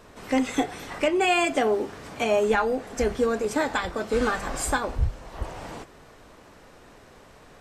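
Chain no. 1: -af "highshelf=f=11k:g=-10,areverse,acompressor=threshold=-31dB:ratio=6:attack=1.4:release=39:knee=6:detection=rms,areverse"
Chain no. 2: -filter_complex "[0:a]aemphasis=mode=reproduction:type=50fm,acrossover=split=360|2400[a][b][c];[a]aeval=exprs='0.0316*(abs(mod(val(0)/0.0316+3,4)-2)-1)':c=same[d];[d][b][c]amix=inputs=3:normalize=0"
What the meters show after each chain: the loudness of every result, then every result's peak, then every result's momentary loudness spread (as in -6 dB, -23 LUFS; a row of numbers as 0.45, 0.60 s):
-36.0, -26.5 LUFS; -24.0, -11.0 dBFS; 17, 16 LU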